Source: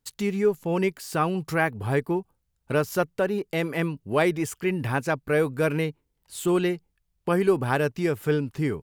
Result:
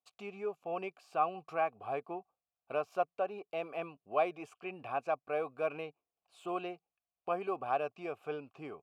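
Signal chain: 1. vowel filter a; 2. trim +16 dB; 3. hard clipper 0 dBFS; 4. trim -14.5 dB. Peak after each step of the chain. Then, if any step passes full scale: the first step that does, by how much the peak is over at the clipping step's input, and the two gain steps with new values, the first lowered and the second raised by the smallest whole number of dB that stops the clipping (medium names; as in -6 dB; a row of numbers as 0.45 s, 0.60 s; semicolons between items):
-19.0 dBFS, -3.0 dBFS, -3.0 dBFS, -17.5 dBFS; nothing clips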